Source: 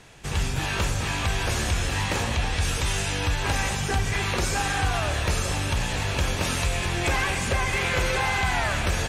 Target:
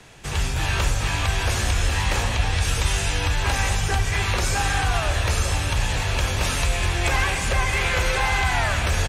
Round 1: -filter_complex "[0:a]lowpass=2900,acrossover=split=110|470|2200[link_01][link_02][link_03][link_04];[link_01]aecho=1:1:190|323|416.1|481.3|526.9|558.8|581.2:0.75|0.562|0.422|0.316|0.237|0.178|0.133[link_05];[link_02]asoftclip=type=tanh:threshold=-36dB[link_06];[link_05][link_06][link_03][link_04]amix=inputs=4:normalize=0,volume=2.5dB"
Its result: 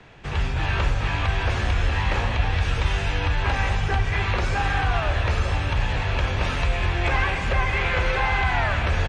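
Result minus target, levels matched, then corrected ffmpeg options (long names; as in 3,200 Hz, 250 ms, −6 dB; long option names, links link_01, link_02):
4,000 Hz band −4.0 dB
-filter_complex "[0:a]acrossover=split=110|470|2200[link_01][link_02][link_03][link_04];[link_01]aecho=1:1:190|323|416.1|481.3|526.9|558.8|581.2:0.75|0.562|0.422|0.316|0.237|0.178|0.133[link_05];[link_02]asoftclip=type=tanh:threshold=-36dB[link_06];[link_05][link_06][link_03][link_04]amix=inputs=4:normalize=0,volume=2.5dB"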